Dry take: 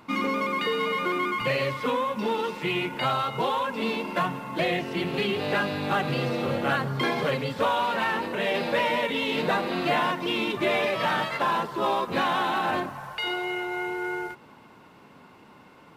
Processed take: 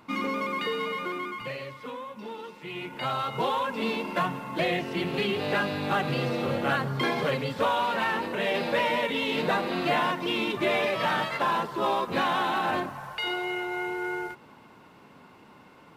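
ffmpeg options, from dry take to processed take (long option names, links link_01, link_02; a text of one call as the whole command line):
ffmpeg -i in.wav -af "volume=8dB,afade=type=out:start_time=0.67:duration=0.98:silence=0.354813,afade=type=in:start_time=2.66:duration=0.76:silence=0.281838" out.wav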